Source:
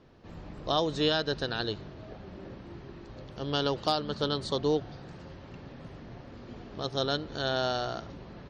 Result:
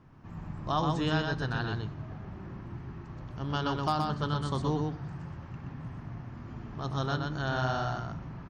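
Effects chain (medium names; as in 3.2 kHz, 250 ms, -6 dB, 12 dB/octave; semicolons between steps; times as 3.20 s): graphic EQ 125/500/1000/4000 Hz +7/-11/+5/-12 dB; delay 124 ms -4 dB; on a send at -14.5 dB: reverberation RT60 0.60 s, pre-delay 12 ms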